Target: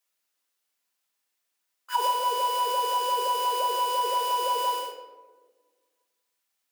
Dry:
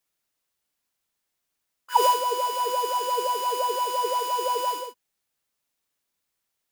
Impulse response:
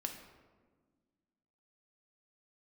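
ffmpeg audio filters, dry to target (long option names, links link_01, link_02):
-filter_complex "[0:a]highpass=frequency=680:poles=1,acompressor=threshold=-25dB:ratio=6[link_01];[1:a]atrim=start_sample=2205[link_02];[link_01][link_02]afir=irnorm=-1:irlink=0,volume=2.5dB"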